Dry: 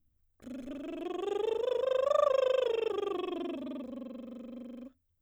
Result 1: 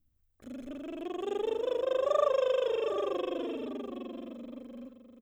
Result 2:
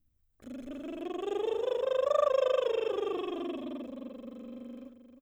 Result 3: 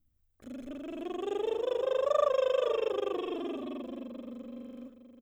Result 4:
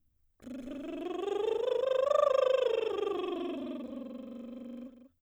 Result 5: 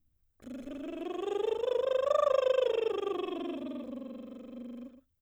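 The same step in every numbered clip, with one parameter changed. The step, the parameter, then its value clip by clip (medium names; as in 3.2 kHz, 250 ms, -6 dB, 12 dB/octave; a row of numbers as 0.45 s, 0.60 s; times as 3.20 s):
delay, time: 772 ms, 311 ms, 483 ms, 192 ms, 117 ms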